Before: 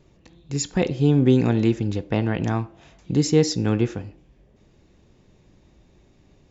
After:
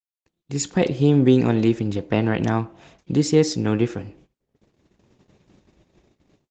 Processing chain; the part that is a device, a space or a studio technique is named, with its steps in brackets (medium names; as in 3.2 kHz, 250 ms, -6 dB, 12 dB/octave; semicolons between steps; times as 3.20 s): video call (high-pass 130 Hz 6 dB/octave; level rider gain up to 10 dB; gate -47 dBFS, range -60 dB; trim -3 dB; Opus 16 kbps 48 kHz)